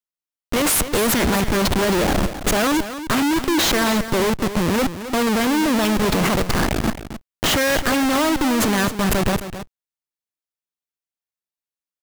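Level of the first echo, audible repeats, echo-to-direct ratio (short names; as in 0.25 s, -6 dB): -11.5 dB, 1, -11.5 dB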